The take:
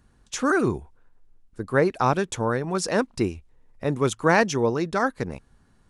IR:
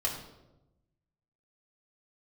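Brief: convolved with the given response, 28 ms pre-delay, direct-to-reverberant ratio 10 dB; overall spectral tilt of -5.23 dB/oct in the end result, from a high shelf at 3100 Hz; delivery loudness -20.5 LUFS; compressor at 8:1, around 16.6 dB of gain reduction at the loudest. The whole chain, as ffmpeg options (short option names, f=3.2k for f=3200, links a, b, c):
-filter_complex "[0:a]highshelf=f=3.1k:g=-5,acompressor=threshold=-32dB:ratio=8,asplit=2[a][b];[1:a]atrim=start_sample=2205,adelay=28[c];[b][c]afir=irnorm=-1:irlink=0,volume=-15.5dB[d];[a][d]amix=inputs=2:normalize=0,volume=16.5dB"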